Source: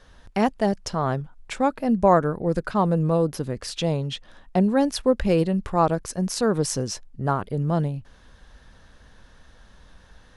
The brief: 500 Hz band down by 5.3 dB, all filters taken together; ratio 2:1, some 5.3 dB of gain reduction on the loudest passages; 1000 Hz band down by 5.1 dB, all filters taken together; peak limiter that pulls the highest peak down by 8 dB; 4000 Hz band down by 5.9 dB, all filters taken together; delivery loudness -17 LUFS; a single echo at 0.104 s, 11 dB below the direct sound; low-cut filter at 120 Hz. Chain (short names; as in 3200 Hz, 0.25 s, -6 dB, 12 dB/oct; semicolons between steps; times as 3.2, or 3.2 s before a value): HPF 120 Hz; bell 500 Hz -5 dB; bell 1000 Hz -4.5 dB; bell 4000 Hz -8 dB; compressor 2:1, threshold -27 dBFS; limiter -23 dBFS; echo 0.104 s -11 dB; gain +16 dB